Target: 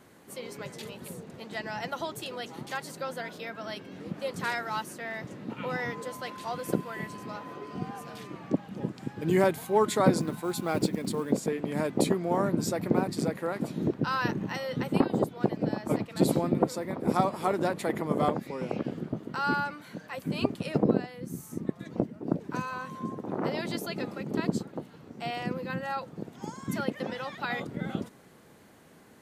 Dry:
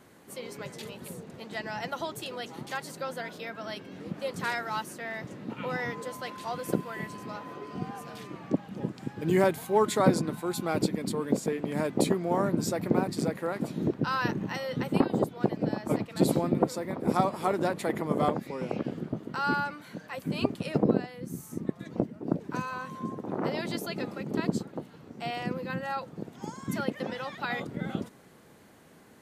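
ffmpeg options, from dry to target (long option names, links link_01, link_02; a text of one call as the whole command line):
ffmpeg -i in.wav -filter_complex "[0:a]asettb=1/sr,asplit=3[link_01][link_02][link_03];[link_01]atrim=end=10.194[link_04];[link_02]atrim=start=10.19:end=11.3,asetpts=PTS-STARTPTS,afade=type=in:duration=0.004:curve=qsin,afade=type=out:start_time=1.106:duration=0.004:curve=qsin,acrusher=bits=7:mode=log:mix=0:aa=0.000001[link_05];[link_03]atrim=start=11.296[link_06];[link_04][link_05]acrossfade=duration=0.004:curve1=hsin:curve2=qsin[link_07];[link_07][link_06]acrossfade=duration=0.004:curve1=qsin:curve2=hsin" out.wav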